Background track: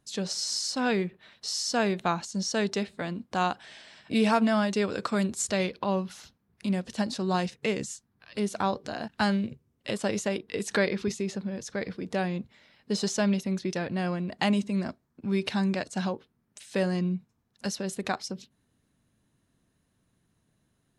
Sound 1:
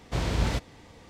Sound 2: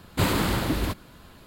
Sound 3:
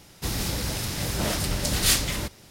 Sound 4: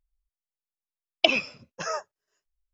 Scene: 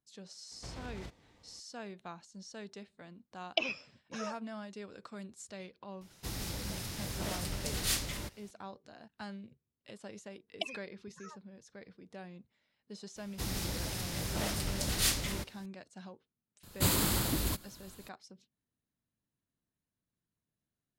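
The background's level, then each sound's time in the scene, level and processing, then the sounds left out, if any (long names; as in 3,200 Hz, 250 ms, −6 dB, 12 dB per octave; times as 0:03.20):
background track −19 dB
0:00.51: mix in 1 −14 dB + downward compressor, threshold −27 dBFS
0:02.33: mix in 4 −11.5 dB
0:06.01: mix in 3 −11 dB
0:09.37: mix in 4 −16 dB + spectral dynamics exaggerated over time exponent 3
0:13.16: mix in 3 −8.5 dB
0:16.63: mix in 2 −9.5 dB + bass and treble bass +3 dB, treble +14 dB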